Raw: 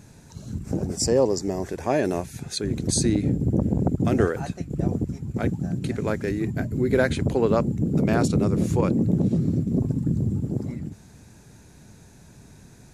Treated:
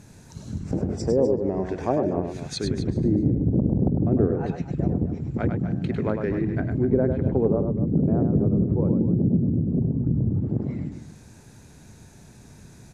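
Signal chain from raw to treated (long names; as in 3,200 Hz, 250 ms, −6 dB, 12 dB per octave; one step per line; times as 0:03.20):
treble cut that deepens with the level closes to 550 Hz, closed at −18 dBFS
0:07.53–0:10.09: head-to-tape spacing loss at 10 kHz 32 dB
loudspeakers that aren't time-aligned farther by 35 metres −6 dB, 86 metres −12 dB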